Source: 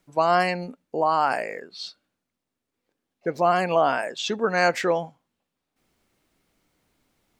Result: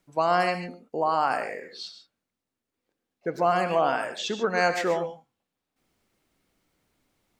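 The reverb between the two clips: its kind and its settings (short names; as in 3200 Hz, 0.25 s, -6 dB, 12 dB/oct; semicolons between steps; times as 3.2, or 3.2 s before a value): non-linear reverb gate 0.16 s rising, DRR 9 dB; gain -3 dB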